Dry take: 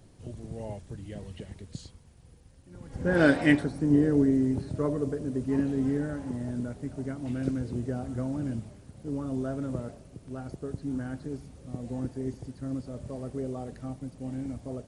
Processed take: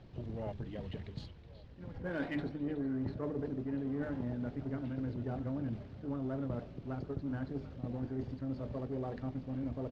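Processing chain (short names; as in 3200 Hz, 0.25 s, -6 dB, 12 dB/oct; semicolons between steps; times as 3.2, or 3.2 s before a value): LPF 4100 Hz 24 dB/oct; notches 50/100/150/200/250/300/350/400/450 Hz; reverse; compressor 8:1, threshold -34 dBFS, peak gain reduction 17 dB; reverse; tempo 1.5×; in parallel at -4 dB: one-sided clip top -48 dBFS; on the sum: delay with a stepping band-pass 0.37 s, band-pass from 3200 Hz, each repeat -1.4 oct, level -12 dB; gain -2.5 dB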